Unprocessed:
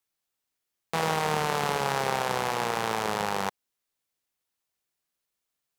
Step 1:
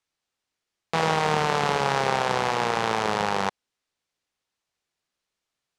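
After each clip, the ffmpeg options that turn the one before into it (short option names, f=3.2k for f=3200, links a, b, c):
-af "lowpass=6.4k,volume=4dB"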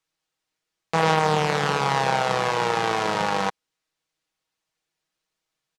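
-af "aecho=1:1:6.3:0.59"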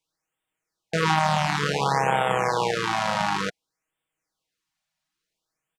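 -af "afftfilt=real='re*(1-between(b*sr/1024,360*pow(5300/360,0.5+0.5*sin(2*PI*0.56*pts/sr))/1.41,360*pow(5300/360,0.5+0.5*sin(2*PI*0.56*pts/sr))*1.41))':imag='im*(1-between(b*sr/1024,360*pow(5300/360,0.5+0.5*sin(2*PI*0.56*pts/sr))/1.41,360*pow(5300/360,0.5+0.5*sin(2*PI*0.56*pts/sr))*1.41))':win_size=1024:overlap=0.75"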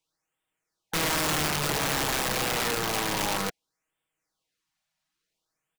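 -af "aeval=exprs='(mod(11.2*val(0)+1,2)-1)/11.2':c=same"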